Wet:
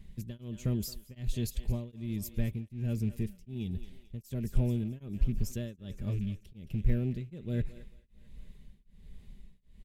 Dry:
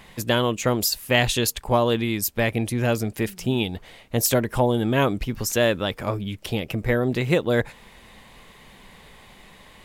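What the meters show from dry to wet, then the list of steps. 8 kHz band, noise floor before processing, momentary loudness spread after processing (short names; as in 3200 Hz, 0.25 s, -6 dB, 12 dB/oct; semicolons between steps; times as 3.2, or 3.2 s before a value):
-20.0 dB, -50 dBFS, 11 LU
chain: rattling part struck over -28 dBFS, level -25 dBFS; passive tone stack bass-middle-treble 10-0-1; in parallel at -9 dB: hard clip -34.5 dBFS, distortion -14 dB; on the sum: low shelf 470 Hz +9.5 dB; comb 5 ms, depth 30%; on a send: thinning echo 0.221 s, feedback 61%, high-pass 430 Hz, level -15 dB; on the sum: beating tremolo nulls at 1.3 Hz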